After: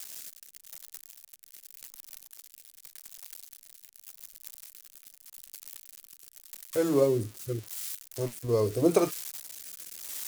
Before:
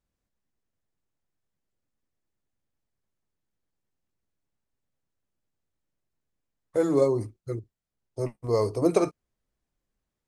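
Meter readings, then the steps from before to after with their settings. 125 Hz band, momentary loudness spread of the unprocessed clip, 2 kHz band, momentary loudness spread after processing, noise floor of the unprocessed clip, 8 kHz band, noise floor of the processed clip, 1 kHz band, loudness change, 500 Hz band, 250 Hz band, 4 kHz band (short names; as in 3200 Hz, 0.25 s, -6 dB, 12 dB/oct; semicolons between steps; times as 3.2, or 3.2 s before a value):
-1.0 dB, 14 LU, +1.0 dB, 24 LU, -85 dBFS, +10.0 dB, -60 dBFS, -3.0 dB, -3.5 dB, -1.5 dB, -1.5 dB, n/a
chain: switching spikes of -25 dBFS; rotary speaker horn 0.85 Hz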